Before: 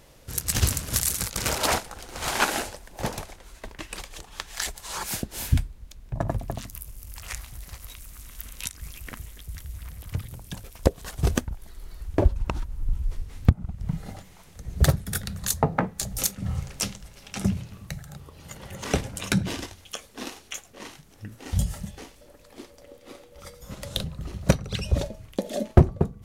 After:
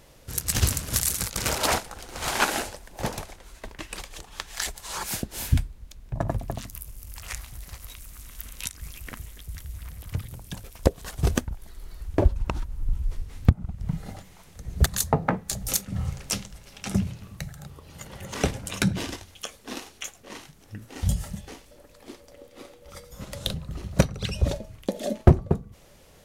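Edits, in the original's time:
14.86–15.36 s: delete

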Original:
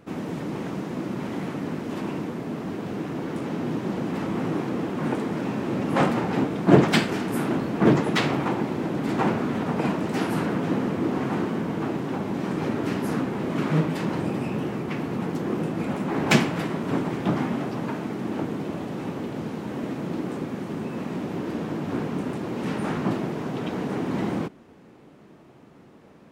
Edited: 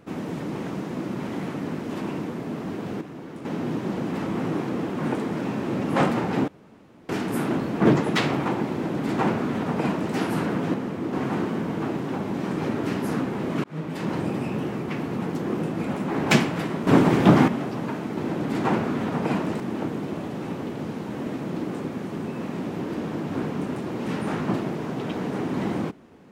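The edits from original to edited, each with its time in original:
3.01–3.45 s: gain -8 dB
6.48–7.09 s: room tone
8.71–10.14 s: copy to 18.17 s
10.74–11.13 s: gain -4 dB
13.64–14.11 s: fade in
16.87–17.48 s: gain +9 dB

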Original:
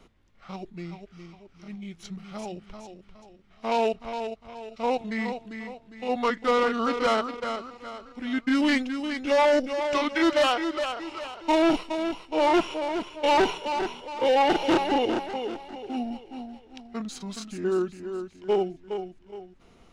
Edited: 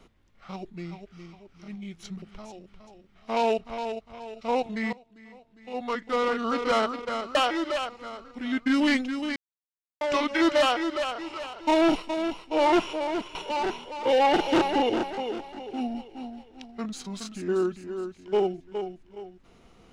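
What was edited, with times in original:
2.22–2.57 s: delete
5.28–7.18 s: fade in, from -21 dB
9.17–9.82 s: mute
10.42–10.96 s: copy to 7.70 s
13.16–13.51 s: delete

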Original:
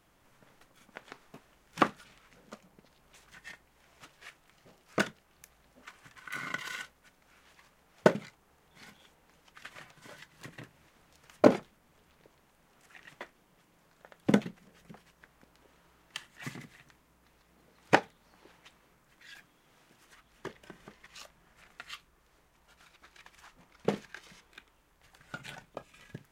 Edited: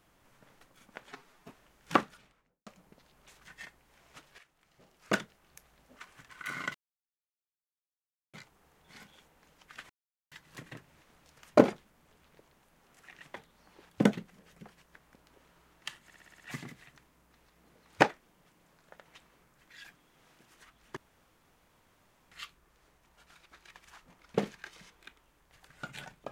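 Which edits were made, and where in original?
1.08–1.35 s: stretch 1.5×
1.86–2.53 s: studio fade out
4.25–5.06 s: fade in, from -12.5 dB
6.61–8.20 s: mute
9.76–10.18 s: mute
13.22–14.18 s: swap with 18.02–18.56 s
16.33 s: stutter 0.06 s, 7 plays
20.47–21.82 s: room tone

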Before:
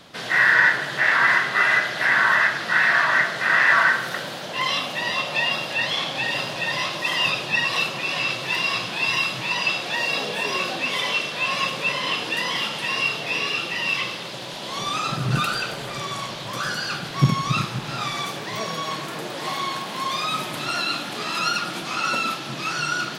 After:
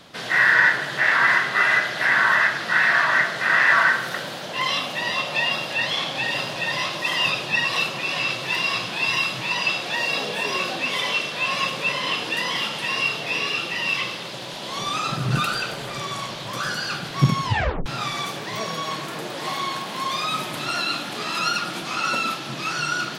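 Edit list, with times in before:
17.43 s: tape stop 0.43 s

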